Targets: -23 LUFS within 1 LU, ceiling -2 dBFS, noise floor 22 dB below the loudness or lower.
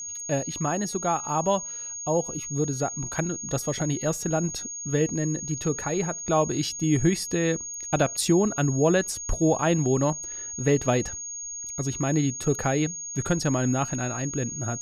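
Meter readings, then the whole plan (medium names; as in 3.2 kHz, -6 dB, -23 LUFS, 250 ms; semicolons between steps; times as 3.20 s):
steady tone 6.6 kHz; tone level -33 dBFS; loudness -26.0 LUFS; peak level -10.5 dBFS; loudness target -23.0 LUFS
-> band-stop 6.6 kHz, Q 30; trim +3 dB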